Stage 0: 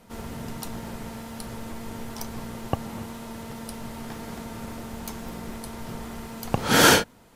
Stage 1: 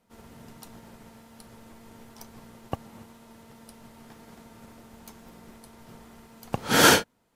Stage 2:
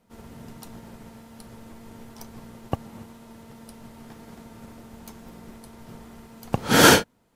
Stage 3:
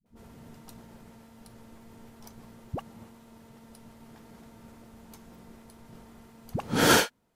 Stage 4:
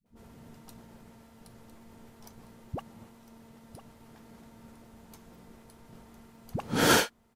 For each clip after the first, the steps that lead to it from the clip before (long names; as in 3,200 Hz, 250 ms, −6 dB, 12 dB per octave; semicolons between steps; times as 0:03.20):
low-shelf EQ 82 Hz −5.5 dB; expander for the loud parts 1.5 to 1, over −44 dBFS
low-shelf EQ 450 Hz +4.5 dB; level +2 dB
all-pass dispersion highs, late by 60 ms, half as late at 360 Hz; level −6.5 dB
single-tap delay 1,005 ms −13 dB; level −2 dB